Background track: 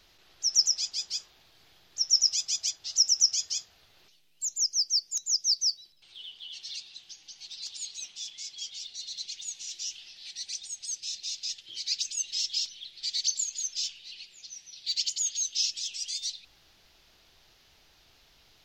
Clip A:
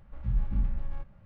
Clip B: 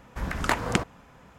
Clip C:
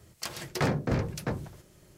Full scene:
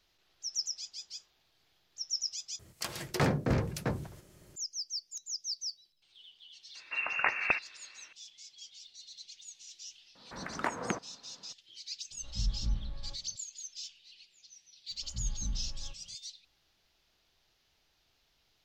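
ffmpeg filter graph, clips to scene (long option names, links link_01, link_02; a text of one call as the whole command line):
ffmpeg -i bed.wav -i cue0.wav -i cue1.wav -i cue2.wav -filter_complex "[2:a]asplit=2[link_01][link_02];[1:a]asplit=2[link_03][link_04];[0:a]volume=-11.5dB[link_05];[link_01]lowpass=frequency=2400:width_type=q:width=0.5098,lowpass=frequency=2400:width_type=q:width=0.6013,lowpass=frequency=2400:width_type=q:width=0.9,lowpass=frequency=2400:width_type=q:width=2.563,afreqshift=-2800[link_06];[link_02]acrossover=split=150 2400:gain=0.0891 1 0.2[link_07][link_08][link_09];[link_07][link_08][link_09]amix=inputs=3:normalize=0[link_10];[link_03]flanger=delay=17.5:depth=2.5:speed=1.8[link_11];[link_04]crystalizer=i=3:c=0[link_12];[link_05]asplit=2[link_13][link_14];[link_13]atrim=end=2.594[link_15];[3:a]atrim=end=1.97,asetpts=PTS-STARTPTS,volume=-1dB[link_16];[link_14]atrim=start=4.556[link_17];[link_06]atrim=end=1.38,asetpts=PTS-STARTPTS,volume=-4dB,afade=type=in:duration=0.004:curve=hsin,afade=type=out:start_time=1.376:duration=0.004:curve=hsin,adelay=6750[link_18];[link_10]atrim=end=1.38,asetpts=PTS-STARTPTS,volume=-7dB,afade=type=in:duration=0.004:curve=hsin,afade=type=out:start_time=1.376:duration=0.004:curve=hsin,adelay=10150[link_19];[link_11]atrim=end=1.25,asetpts=PTS-STARTPTS,volume=-2.5dB,afade=type=in:duration=0.004:curve=hsin,afade=type=out:start_time=1.246:duration=0.004:curve=hsin,adelay=12110[link_20];[link_12]atrim=end=1.25,asetpts=PTS-STARTPTS,volume=-8.5dB,afade=type=in:duration=0.004:curve=hsin,afade=type=out:start_time=1.246:duration=0.004:curve=hsin,adelay=14900[link_21];[link_15][link_16]acrossfade=duration=0.004:curve1=hsin:curve2=hsin[link_22];[link_22][link_17]acrossfade=duration=0.004:curve1=hsin:curve2=hsin[link_23];[link_23][link_18][link_19][link_20][link_21]amix=inputs=5:normalize=0" out.wav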